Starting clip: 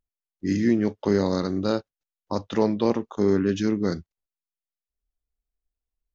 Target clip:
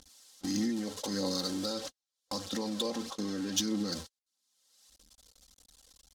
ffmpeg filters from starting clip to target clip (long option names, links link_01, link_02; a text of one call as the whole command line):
ffmpeg -i in.wav -filter_complex "[0:a]aeval=exprs='val(0)+0.5*0.0266*sgn(val(0))':channel_layout=same,agate=range=-50dB:threshold=-31dB:ratio=16:detection=peak,highpass=frequency=180:poles=1,aecho=1:1:3.8:0.73,acompressor=mode=upward:threshold=-33dB:ratio=2.5,alimiter=limit=-21.5dB:level=0:latency=1:release=110,adynamicsmooth=sensitivity=5:basefreq=4800,aexciter=amount=4.5:drive=8.8:freq=3500,aphaser=in_gain=1:out_gain=1:delay=2.3:decay=0.32:speed=1.6:type=triangular,asplit=3[link_01][link_02][link_03];[link_01]afade=type=out:start_time=1.73:duration=0.02[link_04];[link_02]adynamicequalizer=threshold=0.00141:dfrequency=6200:dqfactor=0.7:tfrequency=6200:tqfactor=0.7:attack=5:release=100:ratio=0.375:range=3:mode=cutabove:tftype=highshelf,afade=type=in:start_time=1.73:duration=0.02,afade=type=out:start_time=3.93:duration=0.02[link_05];[link_03]afade=type=in:start_time=3.93:duration=0.02[link_06];[link_04][link_05][link_06]amix=inputs=3:normalize=0,volume=-5.5dB" out.wav